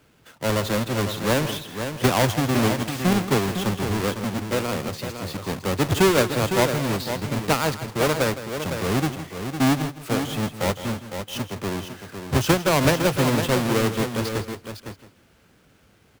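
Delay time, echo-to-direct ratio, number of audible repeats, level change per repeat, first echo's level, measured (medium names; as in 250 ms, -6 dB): 162 ms, -6.5 dB, 4, no regular repeats, -13.0 dB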